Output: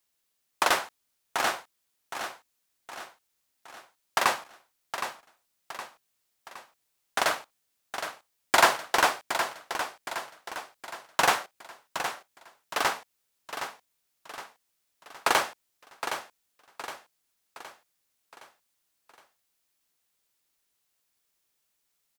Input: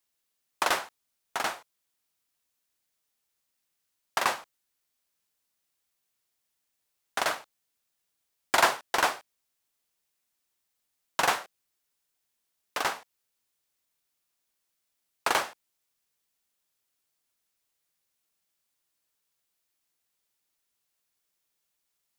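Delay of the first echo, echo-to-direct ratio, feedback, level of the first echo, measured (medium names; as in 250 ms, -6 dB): 766 ms, -8.0 dB, 48%, -9.0 dB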